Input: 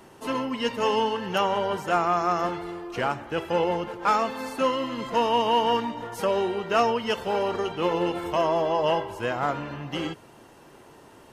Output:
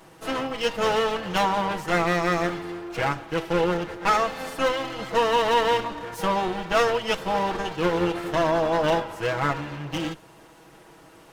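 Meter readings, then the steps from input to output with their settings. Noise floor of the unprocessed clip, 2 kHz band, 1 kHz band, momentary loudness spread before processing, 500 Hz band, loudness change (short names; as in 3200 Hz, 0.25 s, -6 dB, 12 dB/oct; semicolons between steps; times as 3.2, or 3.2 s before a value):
-51 dBFS, +5.0 dB, +0.5 dB, 9 LU, +1.0 dB, +1.0 dB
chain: minimum comb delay 6.2 ms; gain +2 dB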